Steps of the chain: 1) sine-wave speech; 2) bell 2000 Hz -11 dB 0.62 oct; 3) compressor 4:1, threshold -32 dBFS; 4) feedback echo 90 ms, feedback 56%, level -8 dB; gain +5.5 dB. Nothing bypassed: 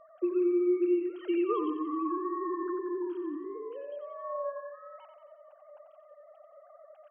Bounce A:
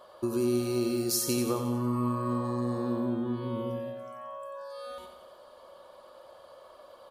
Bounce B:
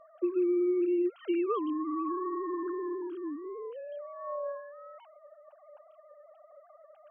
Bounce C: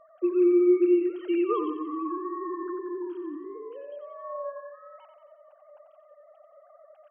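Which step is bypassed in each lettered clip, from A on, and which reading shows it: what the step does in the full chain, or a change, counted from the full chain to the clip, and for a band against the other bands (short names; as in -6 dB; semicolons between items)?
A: 1, 2 kHz band +3.5 dB; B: 4, echo-to-direct -6.5 dB to none; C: 3, crest factor change +2.0 dB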